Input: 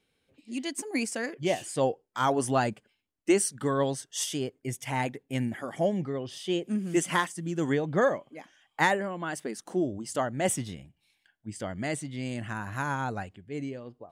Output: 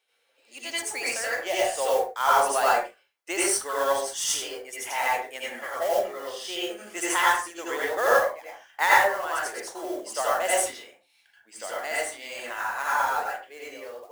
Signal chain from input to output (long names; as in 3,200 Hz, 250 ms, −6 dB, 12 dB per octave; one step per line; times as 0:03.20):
high-pass filter 540 Hz 24 dB per octave
noise that follows the level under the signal 16 dB
convolution reverb, pre-delay 72 ms, DRR −7 dB